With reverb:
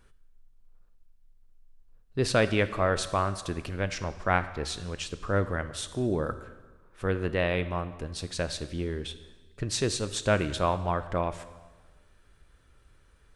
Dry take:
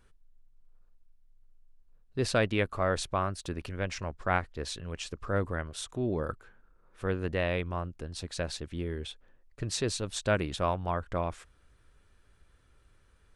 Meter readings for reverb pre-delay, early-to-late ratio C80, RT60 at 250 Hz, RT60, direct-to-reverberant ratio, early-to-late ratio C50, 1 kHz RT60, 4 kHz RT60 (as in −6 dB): 4 ms, 15.0 dB, 1.3 s, 1.3 s, 11.5 dB, 13.5 dB, 1.3 s, 1.2 s